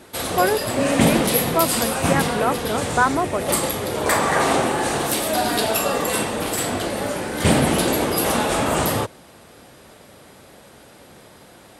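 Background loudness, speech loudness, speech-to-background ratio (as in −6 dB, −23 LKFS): −21.0 LKFS, −23.5 LKFS, −2.5 dB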